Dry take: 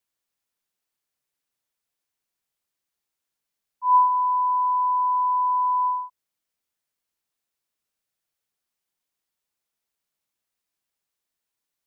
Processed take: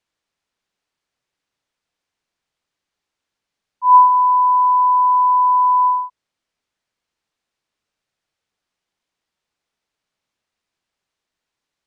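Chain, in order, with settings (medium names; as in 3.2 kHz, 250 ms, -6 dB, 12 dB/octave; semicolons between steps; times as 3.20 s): distance through air 90 m; trim +8.5 dB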